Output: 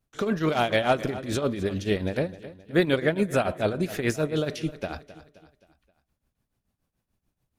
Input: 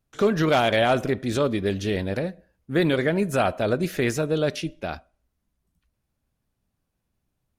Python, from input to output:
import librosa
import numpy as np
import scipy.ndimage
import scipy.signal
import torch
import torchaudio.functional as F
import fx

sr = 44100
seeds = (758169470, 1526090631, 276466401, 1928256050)

p1 = fx.rider(x, sr, range_db=3, speed_s=0.5)
p2 = x + (p1 * 10.0 ** (-2.0 / 20.0))
p3 = fx.tremolo_shape(p2, sr, shape='triangle', hz=6.9, depth_pct=85)
p4 = fx.echo_feedback(p3, sr, ms=263, feedback_pct=46, wet_db=-16.0)
y = p4 * 10.0 ** (-3.5 / 20.0)